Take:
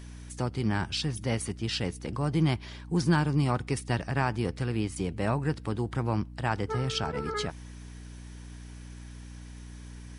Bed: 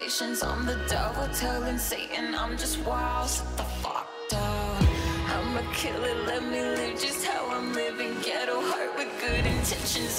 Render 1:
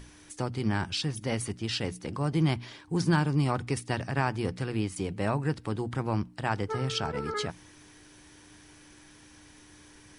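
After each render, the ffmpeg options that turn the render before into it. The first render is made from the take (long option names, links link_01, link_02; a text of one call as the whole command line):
ffmpeg -i in.wav -af "bandreject=frequency=60:width_type=h:width=6,bandreject=frequency=120:width_type=h:width=6,bandreject=frequency=180:width_type=h:width=6,bandreject=frequency=240:width_type=h:width=6" out.wav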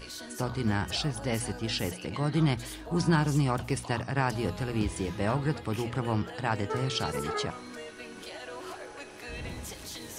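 ffmpeg -i in.wav -i bed.wav -filter_complex "[1:a]volume=-13dB[link_01];[0:a][link_01]amix=inputs=2:normalize=0" out.wav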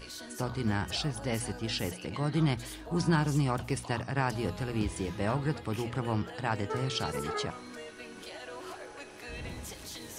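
ffmpeg -i in.wav -af "volume=-2dB" out.wav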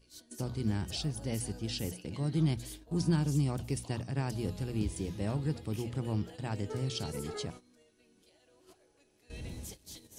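ffmpeg -i in.wav -af "equalizer=frequency=1300:width_type=o:width=2.3:gain=-13.5,agate=range=-16dB:threshold=-45dB:ratio=16:detection=peak" out.wav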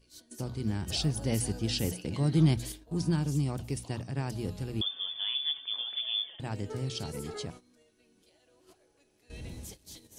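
ffmpeg -i in.wav -filter_complex "[0:a]asettb=1/sr,asplit=3[link_01][link_02][link_03];[link_01]atrim=end=4.814[link_04];[link_02]atrim=start=4.81:end=6.4,asetpts=PTS-STARTPTS,afade=type=in:duration=0.004:curve=qsin,afade=type=out:start_time=1.586:duration=0.004:curve=qsin,lowpass=frequency=3100:width_type=q:width=0.5098,lowpass=frequency=3100:width_type=q:width=0.6013,lowpass=frequency=3100:width_type=q:width=0.9,lowpass=frequency=3100:width_type=q:width=2.563,afreqshift=-3600[link_05];[link_03]atrim=start=6.396[link_06];[link_04][link_05]acrossfade=duration=0.004:curve1=hsin:curve2=qsin[link_07];[link_07][link_06]acrossfade=duration=0.004:curve1=qsin:curve2=hsin,asplit=3[link_08][link_09][link_10];[link_08]atrim=end=0.872[link_11];[link_09]atrim=start=0.868:end=2.722,asetpts=PTS-STARTPTS,volume=5.5dB[link_12];[link_10]atrim=start=2.718[link_13];[link_11][link_12]acrossfade=duration=0.004:curve1=hsin:curve2=hsin[link_14];[link_14][link_13]acrossfade=duration=0.004:curve1=hsin:curve2=hsin" out.wav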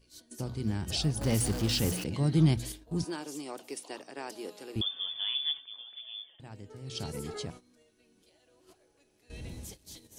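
ffmpeg -i in.wav -filter_complex "[0:a]asettb=1/sr,asplit=3[link_01][link_02][link_03];[link_01]atrim=end=1.214[link_04];[link_02]atrim=start=1.21:end=2.04,asetpts=PTS-STARTPTS,afade=type=in:duration=0.004:curve=qsin,afade=type=out:start_time=0.826:duration=0.004:curve=qsin,aeval=exprs='val(0)+0.5*0.0224*sgn(val(0))':channel_layout=same[link_05];[link_03]atrim=start=2.036[link_06];[link_04][link_05]acrossfade=duration=0.004:curve1=hsin:curve2=qsin[link_07];[link_07][link_06]acrossfade=duration=0.004:curve1=qsin:curve2=hsin,asettb=1/sr,asplit=3[link_08][link_09][link_10];[link_08]atrim=end=3.044[link_11];[link_09]atrim=start=3.04:end=4.76,asetpts=PTS-STARTPTS,afade=type=in:duration=0.004:curve=qsin,afade=type=out:start_time=1.716:duration=0.004:curve=qsin,highpass=frequency=330:width=0.5412,highpass=frequency=330:width=1.3066[link_12];[link_10]atrim=start=4.756[link_13];[link_11][link_12]acrossfade=duration=0.004:curve1=hsin:curve2=qsin[link_14];[link_14][link_13]acrossfade=duration=0.004:curve1=qsin:curve2=hsin,asplit=3[link_15][link_16][link_17];[link_15]atrim=end=5.68,asetpts=PTS-STARTPTS,afade=type=out:start_time=5.53:duration=0.15:silence=0.281838[link_18];[link_16]atrim=start=5.68:end=6.84,asetpts=PTS-STARTPTS,volume=-11dB[link_19];[link_17]atrim=start=6.84,asetpts=PTS-STARTPTS,afade=type=in:duration=0.15:silence=0.281838[link_20];[link_18][link_19][link_20]concat=n=3:v=0:a=1" out.wav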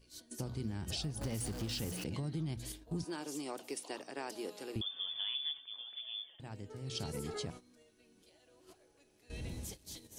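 ffmpeg -i in.wav -af "alimiter=level_in=0.5dB:limit=-24dB:level=0:latency=1:release=422,volume=-0.5dB,acompressor=threshold=-37dB:ratio=2.5" out.wav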